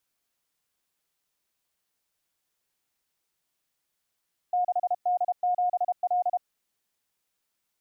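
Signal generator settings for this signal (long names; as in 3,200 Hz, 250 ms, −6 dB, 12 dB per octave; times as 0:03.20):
Morse code "6D7L" 32 words per minute 719 Hz −21.5 dBFS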